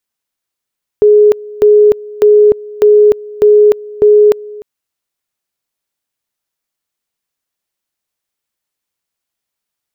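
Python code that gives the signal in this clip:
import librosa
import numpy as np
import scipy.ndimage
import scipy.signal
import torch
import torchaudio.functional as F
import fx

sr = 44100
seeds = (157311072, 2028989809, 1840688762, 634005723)

y = fx.two_level_tone(sr, hz=419.0, level_db=-2.5, drop_db=22.0, high_s=0.3, low_s=0.3, rounds=6)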